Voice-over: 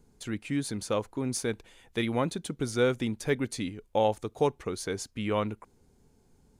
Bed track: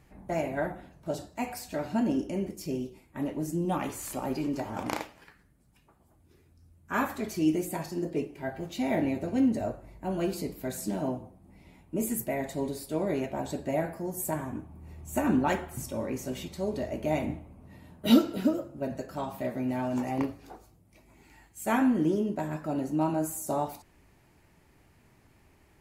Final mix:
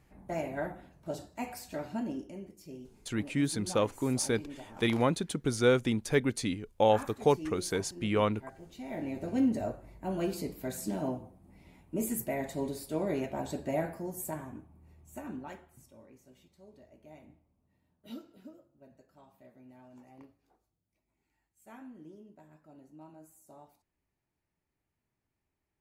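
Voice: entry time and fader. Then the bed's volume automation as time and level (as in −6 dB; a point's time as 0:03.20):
2.85 s, +1.0 dB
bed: 0:01.75 −4.5 dB
0:02.46 −13.5 dB
0:08.84 −13.5 dB
0:09.31 −2.5 dB
0:13.92 −2.5 dB
0:16.19 −24.5 dB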